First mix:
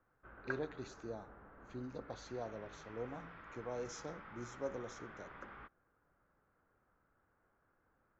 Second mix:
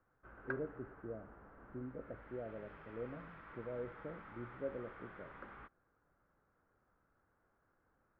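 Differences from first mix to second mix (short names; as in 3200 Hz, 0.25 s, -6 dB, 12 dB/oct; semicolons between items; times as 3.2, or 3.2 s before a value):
speech: add steep low-pass 680 Hz 96 dB/oct; master: add air absorption 170 m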